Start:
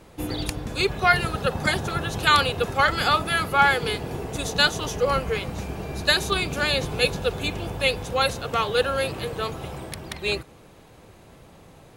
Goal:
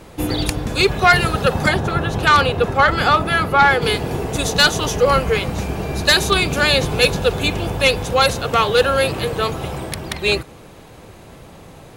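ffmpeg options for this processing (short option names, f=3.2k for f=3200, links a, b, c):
-filter_complex "[0:a]asplit=3[a][b][c];[a]afade=t=out:st=1.67:d=0.02[d];[b]highshelf=f=3.3k:g=-11,afade=t=in:st=1.67:d=0.02,afade=t=out:st=3.81:d=0.02[e];[c]afade=t=in:st=3.81:d=0.02[f];[d][e][f]amix=inputs=3:normalize=0,aeval=exprs='0.631*sin(PI/2*2*val(0)/0.631)':c=same,volume=-1.5dB"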